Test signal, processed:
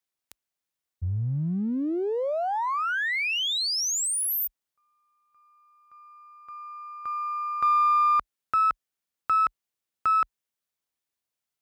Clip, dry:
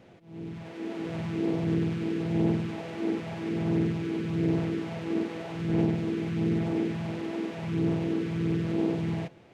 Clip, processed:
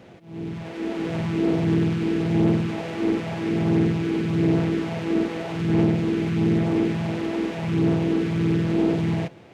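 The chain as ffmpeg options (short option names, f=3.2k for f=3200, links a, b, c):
-af "aeval=exprs='if(lt(val(0),0),0.708*val(0),val(0))':c=same,highpass=f=40:w=0.5412,highpass=f=40:w=1.3066,asoftclip=type=tanh:threshold=-18dB,volume=8.5dB"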